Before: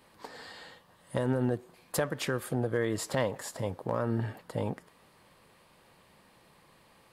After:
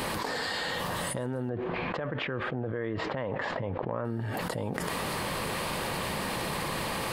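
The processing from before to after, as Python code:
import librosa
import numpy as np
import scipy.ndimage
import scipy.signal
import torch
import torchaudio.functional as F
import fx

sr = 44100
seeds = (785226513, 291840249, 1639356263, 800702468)

y = fx.lowpass(x, sr, hz=2800.0, slope=24, at=(1.49, 4.05))
y = fx.env_flatten(y, sr, amount_pct=100)
y = F.gain(torch.from_numpy(y), -7.5).numpy()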